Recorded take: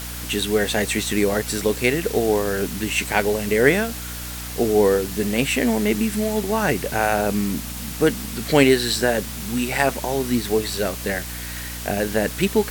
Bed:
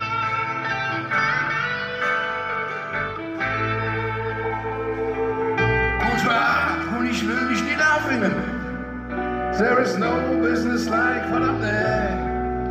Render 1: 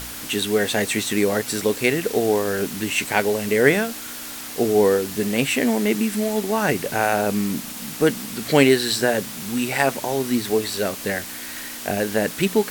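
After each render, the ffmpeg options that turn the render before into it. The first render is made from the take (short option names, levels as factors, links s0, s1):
-af "bandreject=f=60:t=h:w=4,bandreject=f=120:t=h:w=4,bandreject=f=180:t=h:w=4"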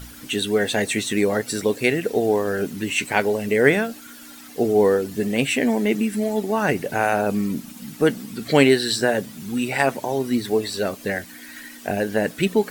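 -af "afftdn=nr=12:nf=-34"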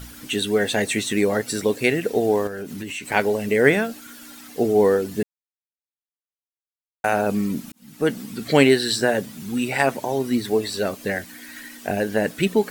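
-filter_complex "[0:a]asettb=1/sr,asplit=3[s0][s1][s2];[s0]atrim=end=2.474[s3];[s1]atrim=start=2.47:end=3.12,asetpts=PTS-STARTPTS,afade=t=in:d=0.004:c=qsin,afade=t=out:st=0.646:d=0.004:c=qsin,acompressor=threshold=0.0398:ratio=6:attack=3.2:release=140:knee=1:detection=peak[s4];[s2]atrim=start=3.116[s5];[s3][s4]acrossfade=d=0.004:c1=hsin:c2=qsin[s6];[s6][s5]acrossfade=d=0.004:c1=qsin:c2=hsin,asplit=4[s7][s8][s9][s10];[s7]atrim=end=5.23,asetpts=PTS-STARTPTS,afade=t=out:st=5.226:d=0.004:c=hsin[s11];[s8]atrim=start=5.23:end=7.04,asetpts=PTS-STARTPTS,volume=0[s12];[s9]atrim=start=7.04:end=7.72,asetpts=PTS-STARTPTS,afade=t=in:d=0.004:c=hsin,afade=t=out:st=0.676:d=0.004:c=hsin[s13];[s10]atrim=start=7.72,asetpts=PTS-STARTPTS,afade=t=in:d=0.47[s14];[s11][s12][s13][s14]concat=n=4:v=0:a=1"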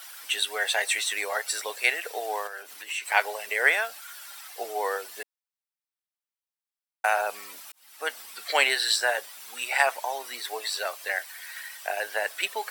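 -af "highpass=f=720:w=0.5412,highpass=f=720:w=1.3066,bandreject=f=6700:w=12"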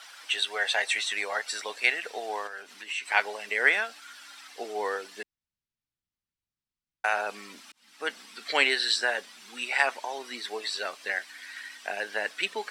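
-af "asubboost=boost=10:cutoff=200,lowpass=5800"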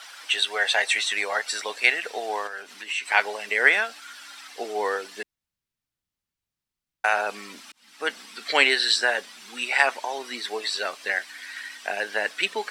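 -af "volume=1.68,alimiter=limit=0.708:level=0:latency=1"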